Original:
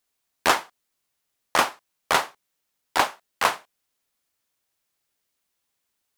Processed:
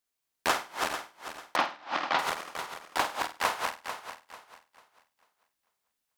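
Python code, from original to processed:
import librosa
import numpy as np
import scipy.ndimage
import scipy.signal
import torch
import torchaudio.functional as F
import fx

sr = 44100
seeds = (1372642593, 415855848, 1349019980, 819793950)

y = fx.reverse_delay_fb(x, sr, ms=222, feedback_pct=54, wet_db=-4.0)
y = fx.cabinet(y, sr, low_hz=160.0, low_slope=12, high_hz=4800.0, hz=(290.0, 430.0, 800.0), db=(5, -9, 4), at=(1.56, 2.19))
y = fx.room_flutter(y, sr, wall_m=8.6, rt60_s=0.3)
y = y * 10.0 ** (-7.5 / 20.0)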